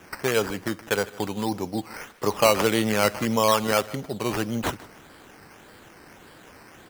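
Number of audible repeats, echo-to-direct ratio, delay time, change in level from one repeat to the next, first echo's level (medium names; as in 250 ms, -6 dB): 2, -19.5 dB, 154 ms, -11.5 dB, -20.0 dB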